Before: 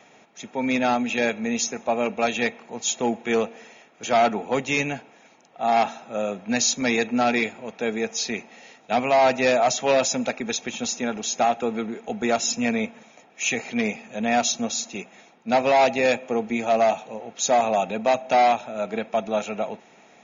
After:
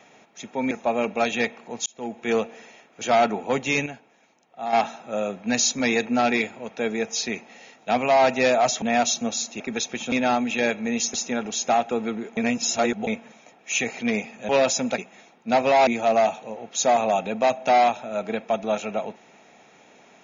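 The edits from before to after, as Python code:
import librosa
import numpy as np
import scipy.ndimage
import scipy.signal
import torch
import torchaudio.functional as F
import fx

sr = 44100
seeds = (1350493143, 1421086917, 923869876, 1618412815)

y = fx.edit(x, sr, fx.move(start_s=0.71, length_s=1.02, to_s=10.85),
    fx.fade_in_span(start_s=2.88, length_s=0.51),
    fx.clip_gain(start_s=4.88, length_s=0.87, db=-7.5),
    fx.swap(start_s=9.84, length_s=0.49, other_s=14.2, other_length_s=0.78),
    fx.reverse_span(start_s=12.08, length_s=0.7),
    fx.cut(start_s=15.87, length_s=0.64), tone=tone)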